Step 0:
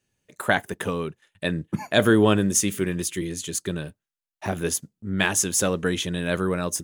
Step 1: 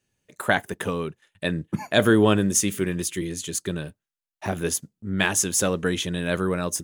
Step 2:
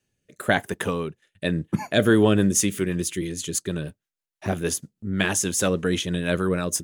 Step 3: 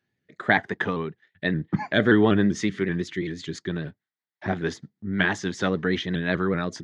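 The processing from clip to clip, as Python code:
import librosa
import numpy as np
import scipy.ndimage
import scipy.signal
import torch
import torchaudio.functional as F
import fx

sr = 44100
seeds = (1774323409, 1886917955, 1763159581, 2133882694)

y1 = x
y2 = fx.rotary_switch(y1, sr, hz=1.0, then_hz=6.3, switch_at_s=1.73)
y2 = y2 * librosa.db_to_amplitude(3.0)
y3 = fx.cabinet(y2, sr, low_hz=110.0, low_slope=12, high_hz=4300.0, hz=(540.0, 790.0, 1900.0, 2700.0), db=(-7, 3, 8, -9))
y3 = fx.vibrato_shape(y3, sr, shape='saw_up', rate_hz=5.2, depth_cents=100.0)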